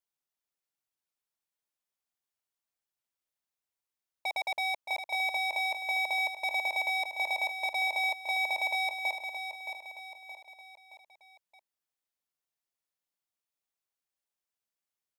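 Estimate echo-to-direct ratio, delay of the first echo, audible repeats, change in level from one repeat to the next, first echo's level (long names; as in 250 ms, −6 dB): −7.0 dB, 621 ms, 4, −6.5 dB, −8.0 dB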